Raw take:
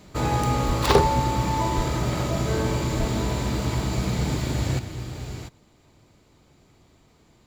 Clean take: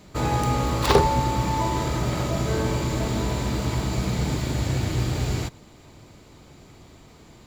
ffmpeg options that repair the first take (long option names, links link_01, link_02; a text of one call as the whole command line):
ffmpeg -i in.wav -filter_complex "[0:a]asplit=3[link_01][link_02][link_03];[link_01]afade=type=out:start_time=0.66:duration=0.02[link_04];[link_02]highpass=frequency=140:width=0.5412,highpass=frequency=140:width=1.3066,afade=type=in:start_time=0.66:duration=0.02,afade=type=out:start_time=0.78:duration=0.02[link_05];[link_03]afade=type=in:start_time=0.78:duration=0.02[link_06];[link_04][link_05][link_06]amix=inputs=3:normalize=0,asplit=3[link_07][link_08][link_09];[link_07]afade=type=out:start_time=1.76:duration=0.02[link_10];[link_08]highpass=frequency=140:width=0.5412,highpass=frequency=140:width=1.3066,afade=type=in:start_time=1.76:duration=0.02,afade=type=out:start_time=1.88:duration=0.02[link_11];[link_09]afade=type=in:start_time=1.88:duration=0.02[link_12];[link_10][link_11][link_12]amix=inputs=3:normalize=0,asplit=3[link_13][link_14][link_15];[link_13]afade=type=out:start_time=2.98:duration=0.02[link_16];[link_14]highpass=frequency=140:width=0.5412,highpass=frequency=140:width=1.3066,afade=type=in:start_time=2.98:duration=0.02,afade=type=out:start_time=3.1:duration=0.02[link_17];[link_15]afade=type=in:start_time=3.1:duration=0.02[link_18];[link_16][link_17][link_18]amix=inputs=3:normalize=0,asetnsamples=nb_out_samples=441:pad=0,asendcmd='4.79 volume volume 9dB',volume=0dB" out.wav